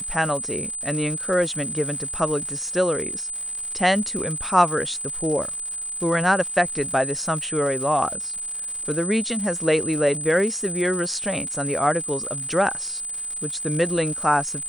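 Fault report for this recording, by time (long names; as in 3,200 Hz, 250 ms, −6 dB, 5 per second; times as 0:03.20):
surface crackle 230 per second −32 dBFS
whistle 8,100 Hz −28 dBFS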